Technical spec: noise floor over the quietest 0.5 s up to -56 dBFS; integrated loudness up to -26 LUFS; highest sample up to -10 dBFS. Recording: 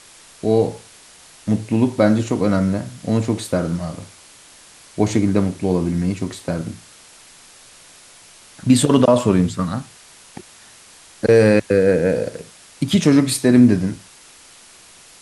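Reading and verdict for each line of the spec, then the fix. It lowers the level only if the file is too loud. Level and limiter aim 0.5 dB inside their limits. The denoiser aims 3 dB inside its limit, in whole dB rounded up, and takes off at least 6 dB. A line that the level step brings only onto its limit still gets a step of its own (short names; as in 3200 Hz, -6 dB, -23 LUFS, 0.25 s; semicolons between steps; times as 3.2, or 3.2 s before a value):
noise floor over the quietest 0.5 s -46 dBFS: fail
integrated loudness -18.0 LUFS: fail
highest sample -2.5 dBFS: fail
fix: denoiser 6 dB, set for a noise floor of -46 dBFS; gain -8.5 dB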